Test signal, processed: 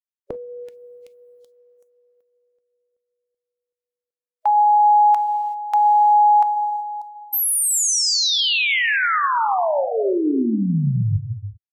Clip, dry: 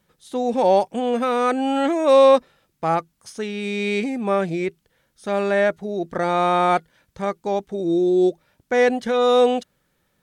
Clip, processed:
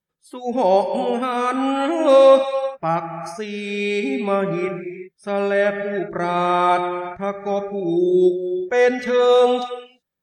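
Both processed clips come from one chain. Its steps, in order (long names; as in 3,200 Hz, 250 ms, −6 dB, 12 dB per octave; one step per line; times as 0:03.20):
reverb whose tail is shaped and stops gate 410 ms flat, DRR 5.5 dB
noise reduction from a noise print of the clip's start 20 dB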